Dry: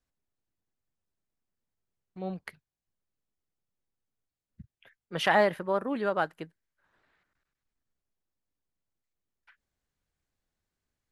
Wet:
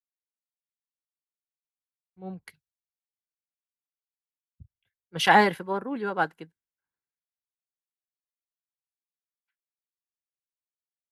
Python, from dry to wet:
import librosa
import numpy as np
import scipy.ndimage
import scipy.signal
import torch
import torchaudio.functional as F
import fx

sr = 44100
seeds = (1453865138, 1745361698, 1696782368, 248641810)

y = fx.notch_comb(x, sr, f0_hz=610.0)
y = fx.band_widen(y, sr, depth_pct=100)